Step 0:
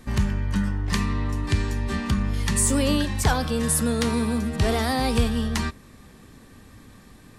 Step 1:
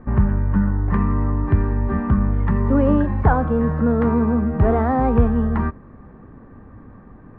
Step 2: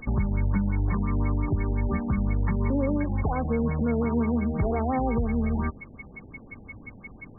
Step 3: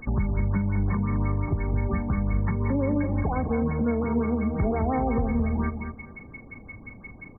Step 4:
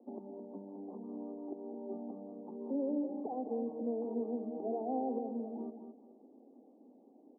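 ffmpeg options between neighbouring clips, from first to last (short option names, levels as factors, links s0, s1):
-af "lowpass=f=1400:w=0.5412,lowpass=f=1400:w=1.3066,volume=2"
-af "alimiter=limit=0.237:level=0:latency=1:release=200,aeval=exprs='val(0)+0.0282*sin(2*PI*2200*n/s)':c=same,afftfilt=real='re*lt(b*sr/1024,860*pow(2300/860,0.5+0.5*sin(2*PI*5.7*pts/sr)))':imag='im*lt(b*sr/1024,860*pow(2300/860,0.5+0.5*sin(2*PI*5.7*pts/sr)))':win_size=1024:overlap=0.75,volume=0.631"
-af "aecho=1:1:215|430|645:0.422|0.105|0.0264"
-af "asuperpass=centerf=440:order=12:qfactor=0.77,volume=0.398"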